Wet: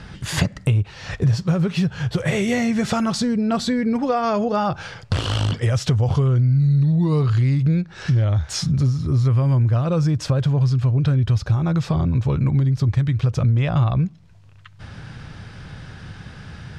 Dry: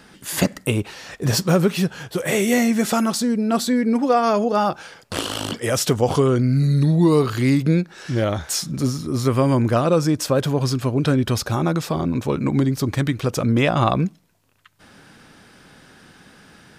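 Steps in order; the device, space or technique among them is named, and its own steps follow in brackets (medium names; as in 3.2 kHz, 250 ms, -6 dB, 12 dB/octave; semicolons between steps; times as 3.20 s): jukebox (low-pass 5.5 kHz 12 dB/octave; resonant low shelf 170 Hz +13.5 dB, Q 1.5; compression 4:1, threshold -24 dBFS, peak gain reduction 17 dB); trim +5.5 dB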